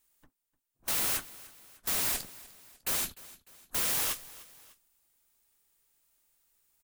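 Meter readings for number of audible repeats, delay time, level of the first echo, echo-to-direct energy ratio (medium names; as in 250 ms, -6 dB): 2, 300 ms, -19.5 dB, -18.5 dB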